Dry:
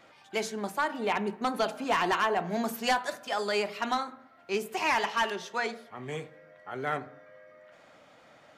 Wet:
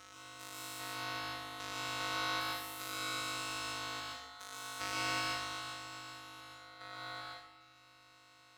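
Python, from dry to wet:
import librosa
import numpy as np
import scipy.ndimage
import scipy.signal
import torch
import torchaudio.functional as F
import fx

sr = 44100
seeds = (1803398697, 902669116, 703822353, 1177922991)

y = fx.spec_steps(x, sr, hold_ms=400)
y = fx.tone_stack(y, sr, knobs='10-0-10')
y = fx.robotise(y, sr, hz=196.0)
y = np.abs(y)
y = y * np.sin(2.0 * np.pi * 1300.0 * np.arange(len(y)) / sr)
y = fx.rev_plate(y, sr, seeds[0], rt60_s=0.89, hf_ratio=0.85, predelay_ms=110, drr_db=-3.5)
y = y * librosa.db_to_amplitude(4.0)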